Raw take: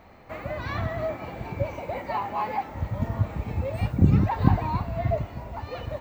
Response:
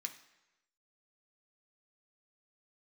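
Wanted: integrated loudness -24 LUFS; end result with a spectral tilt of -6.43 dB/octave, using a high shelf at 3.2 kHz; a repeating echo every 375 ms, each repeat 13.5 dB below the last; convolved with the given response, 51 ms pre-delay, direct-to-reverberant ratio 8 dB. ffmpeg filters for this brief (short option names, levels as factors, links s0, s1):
-filter_complex "[0:a]highshelf=f=3200:g=-3,aecho=1:1:375|750:0.211|0.0444,asplit=2[s0][s1];[1:a]atrim=start_sample=2205,adelay=51[s2];[s1][s2]afir=irnorm=-1:irlink=0,volume=0.531[s3];[s0][s3]amix=inputs=2:normalize=0,volume=1.41"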